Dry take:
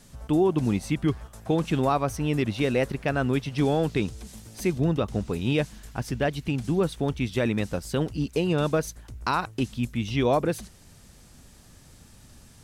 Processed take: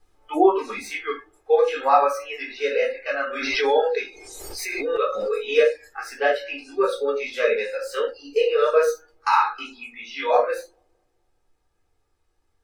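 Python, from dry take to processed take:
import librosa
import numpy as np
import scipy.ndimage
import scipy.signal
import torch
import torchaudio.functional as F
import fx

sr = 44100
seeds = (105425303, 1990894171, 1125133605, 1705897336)

y = fx.tracing_dist(x, sr, depth_ms=0.037)
y = scipy.signal.sosfilt(scipy.signal.butter(4, 480.0, 'highpass', fs=sr, output='sos'), y)
y = fx.dmg_noise_colour(y, sr, seeds[0], colour='pink', level_db=-60.0)
y = y + 0.56 * np.pad(y, (int(2.4 * sr / 1000.0), 0))[:len(y)]
y = fx.rider(y, sr, range_db=5, speed_s=2.0)
y = fx.high_shelf(y, sr, hz=2200.0, db=-12.0)
y = fx.echo_filtered(y, sr, ms=213, feedback_pct=47, hz=2100.0, wet_db=-20.0)
y = fx.room_shoebox(y, sr, seeds[1], volume_m3=380.0, walls='furnished', distance_m=3.6)
y = fx.noise_reduce_blind(y, sr, reduce_db=23)
y = fx.pre_swell(y, sr, db_per_s=32.0, at=(3.3, 5.48))
y = y * librosa.db_to_amplitude(4.5)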